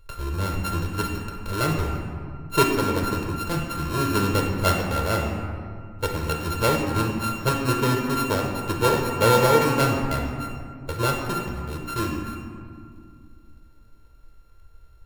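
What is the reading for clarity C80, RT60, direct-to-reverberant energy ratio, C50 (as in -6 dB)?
4.5 dB, 2.1 s, 0.0 dB, 3.0 dB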